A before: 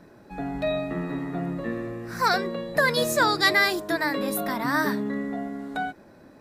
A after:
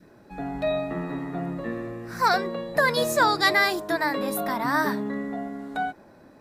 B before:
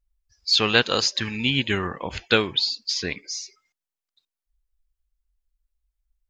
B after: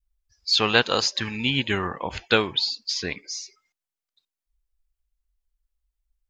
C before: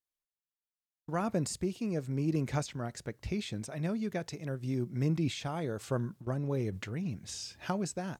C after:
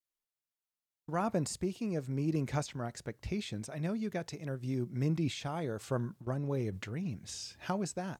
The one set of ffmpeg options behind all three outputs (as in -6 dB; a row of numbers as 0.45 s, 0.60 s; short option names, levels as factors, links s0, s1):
-af "adynamicequalizer=threshold=0.0141:dfrequency=860:dqfactor=1.3:tfrequency=860:tqfactor=1.3:attack=5:release=100:ratio=0.375:range=2.5:mode=boostabove:tftype=bell,volume=0.841"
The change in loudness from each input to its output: 0.0 LU, -1.0 LU, -1.5 LU